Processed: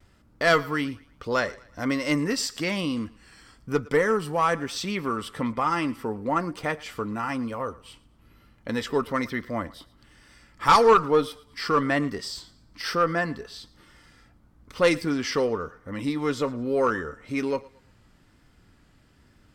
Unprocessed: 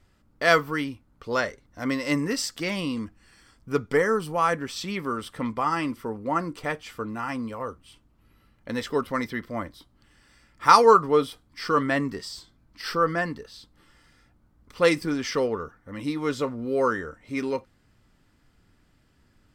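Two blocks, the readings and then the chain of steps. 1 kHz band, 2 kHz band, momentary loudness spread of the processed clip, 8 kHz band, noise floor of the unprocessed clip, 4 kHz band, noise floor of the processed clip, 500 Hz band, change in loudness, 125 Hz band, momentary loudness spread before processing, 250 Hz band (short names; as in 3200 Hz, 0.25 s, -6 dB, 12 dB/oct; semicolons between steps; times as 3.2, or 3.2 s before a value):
-1.0 dB, 0.0 dB, 12 LU, +0.5 dB, -64 dBFS, +1.0 dB, -59 dBFS, 0.0 dB, 0.0 dB, +1.5 dB, 14 LU, +1.0 dB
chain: tube stage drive 7 dB, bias 0.25; on a send: thinning echo 0.113 s, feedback 32%, high-pass 420 Hz, level -21 dB; on the sum: added harmonics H 2 -10 dB, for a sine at -5.5 dBFS; high shelf 12000 Hz -3 dB; in parallel at -2 dB: compressor, threshold -37 dBFS, peak gain reduction 22 dB; on the sum: vibrato 1.1 Hz 44 cents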